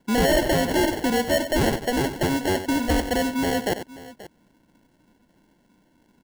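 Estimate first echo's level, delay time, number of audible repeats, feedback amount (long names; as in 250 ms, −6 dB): −11.0 dB, 93 ms, 2, repeats not evenly spaced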